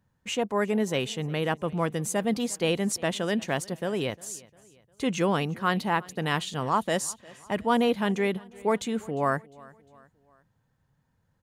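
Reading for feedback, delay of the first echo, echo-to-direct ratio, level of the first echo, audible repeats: 46%, 353 ms, -22.0 dB, -23.0 dB, 2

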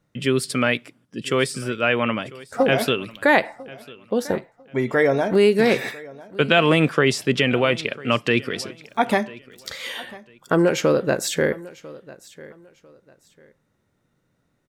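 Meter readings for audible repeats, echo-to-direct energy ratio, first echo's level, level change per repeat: 2, -20.0 dB, -20.5 dB, -11.5 dB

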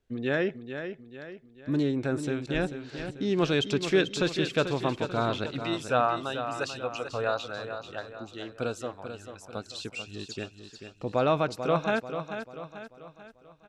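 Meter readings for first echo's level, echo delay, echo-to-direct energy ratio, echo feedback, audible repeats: -9.0 dB, 440 ms, -8.0 dB, 46%, 4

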